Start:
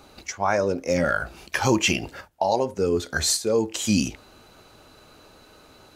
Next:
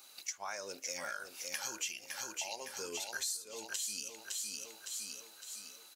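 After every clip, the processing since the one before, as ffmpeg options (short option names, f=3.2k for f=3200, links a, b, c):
-af "aderivative,aecho=1:1:559|1118|1677|2236|2795:0.398|0.183|0.0842|0.0388|0.0178,acompressor=threshold=-40dB:ratio=6,volume=3dB"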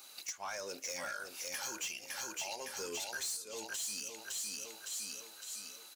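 -af "asoftclip=type=tanh:threshold=-37dB,volume=3dB"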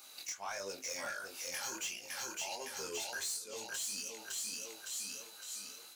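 -af "flanger=delay=20:depth=5.7:speed=1.5,volume=3dB"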